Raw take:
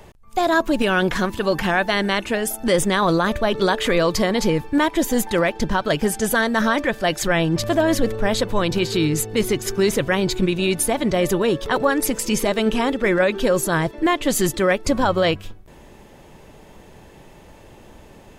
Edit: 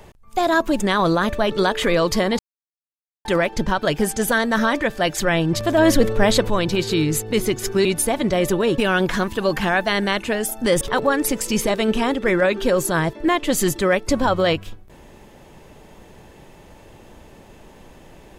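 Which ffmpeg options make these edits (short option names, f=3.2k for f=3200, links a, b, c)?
-filter_complex "[0:a]asplit=9[a][b][c][d][e][f][g][h][i];[a]atrim=end=0.802[j];[b]atrim=start=2.828:end=4.42,asetpts=PTS-STARTPTS,afade=t=out:st=1.588:d=0.004:c=hsin[k];[c]atrim=start=4.42:end=5.28,asetpts=PTS-STARTPTS,volume=0[l];[d]atrim=start=5.28:end=7.812,asetpts=PTS-STARTPTS,afade=t=in:d=0.004:c=hsin[m];[e]atrim=start=7.808:end=8.532,asetpts=PTS-STARTPTS,volume=4dB[n];[f]atrim=start=8.528:end=9.882[o];[g]atrim=start=10.658:end=11.592[p];[h]atrim=start=0.798:end=2.832[q];[i]atrim=start=11.588[r];[k][l][m]concat=n=3:v=0:a=1[s];[j][s]acrossfade=d=0.004:c1=hsin:c2=hsin[t];[t][n]acrossfade=d=0.004:c1=hsin:c2=hsin[u];[u][o]acrossfade=d=0.004:c1=hsin:c2=hsin[v];[v][p]acrossfade=d=0.004:c1=hsin:c2=hsin[w];[w][q]acrossfade=d=0.004:c1=hsin:c2=hsin[x];[x][r]acrossfade=d=0.004:c1=hsin:c2=hsin"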